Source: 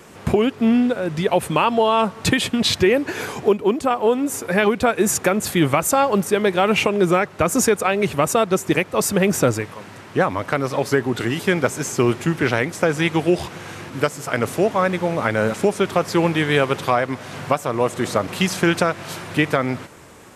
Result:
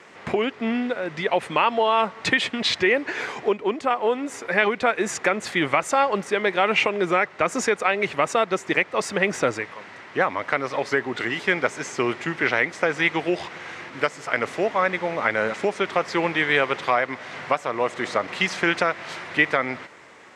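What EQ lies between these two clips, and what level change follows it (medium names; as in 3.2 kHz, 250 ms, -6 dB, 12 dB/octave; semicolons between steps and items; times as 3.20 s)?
high-pass 630 Hz 6 dB/octave; distance through air 110 m; peaking EQ 2 kHz +7 dB 0.33 oct; 0.0 dB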